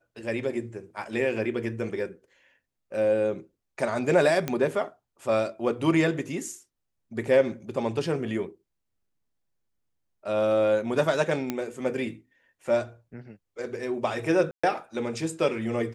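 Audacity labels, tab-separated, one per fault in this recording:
4.480000	4.480000	pop -13 dBFS
11.500000	11.500000	pop -14 dBFS
14.510000	14.630000	gap 0.125 s

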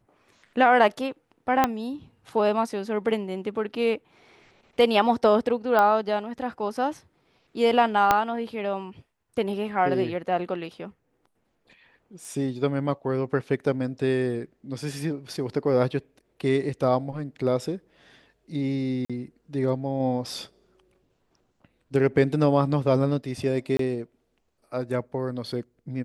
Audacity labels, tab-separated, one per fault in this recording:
1.640000	1.640000	pop -6 dBFS
5.790000	5.790000	pop -11 dBFS
8.110000	8.110000	pop -5 dBFS
12.250000	12.250000	pop
19.050000	19.100000	gap 46 ms
23.770000	23.790000	gap 23 ms

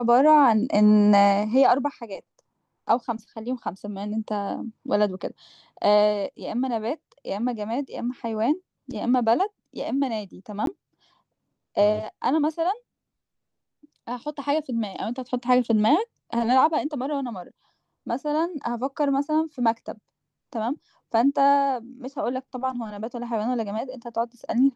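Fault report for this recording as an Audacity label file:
10.660000	10.670000	gap 12 ms

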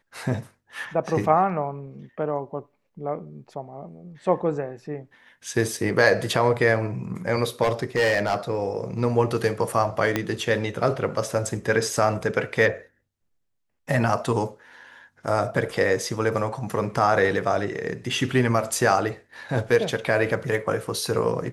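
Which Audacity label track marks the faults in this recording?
7.620000	8.350000	clipped -16.5 dBFS
10.160000	10.160000	pop -8 dBFS

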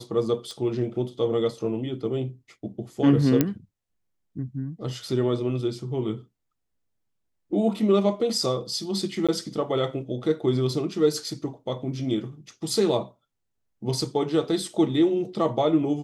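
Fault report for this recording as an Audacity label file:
0.510000	0.510000	pop -25 dBFS
3.410000	3.410000	pop -6 dBFS
9.270000	9.290000	gap 16 ms

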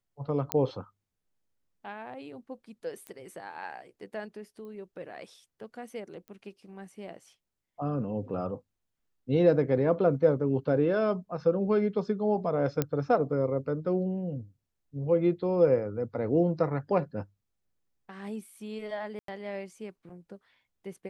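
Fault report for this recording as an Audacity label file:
0.520000	0.520000	pop -11 dBFS
3.070000	3.070000	pop -26 dBFS
4.650000	4.650000	pop -37 dBFS
6.280000	6.280000	pop -32 dBFS
12.820000	12.820000	pop -13 dBFS
19.190000	19.280000	gap 93 ms

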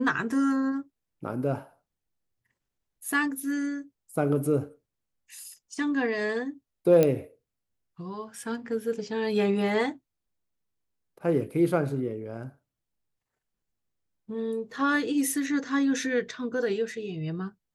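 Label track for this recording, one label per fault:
7.030000	7.030000	pop -10 dBFS

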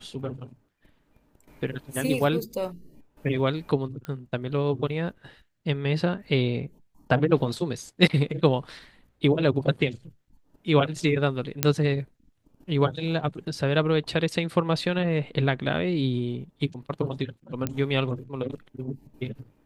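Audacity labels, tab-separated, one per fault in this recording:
4.050000	4.050000	pop -22 dBFS
11.630000	11.630000	pop -3 dBFS
17.670000	17.670000	pop -13 dBFS

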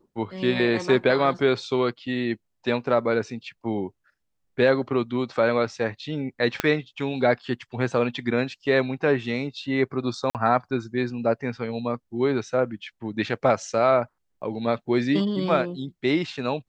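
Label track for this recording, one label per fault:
6.600000	6.600000	pop -7 dBFS
10.300000	10.350000	gap 48 ms

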